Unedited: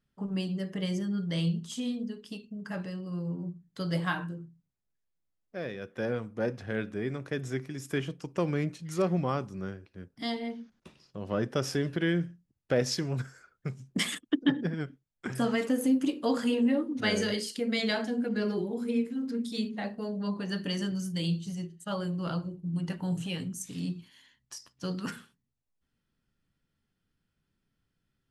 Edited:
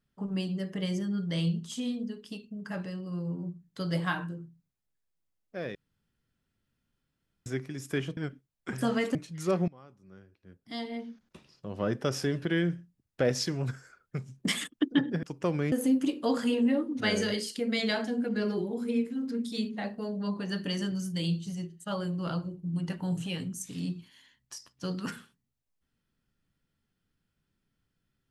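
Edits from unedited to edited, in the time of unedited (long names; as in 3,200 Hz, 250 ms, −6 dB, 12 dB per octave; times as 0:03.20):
0:05.75–0:07.46: fill with room tone
0:08.17–0:08.66: swap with 0:14.74–0:15.72
0:09.19–0:10.60: fade in quadratic, from −23.5 dB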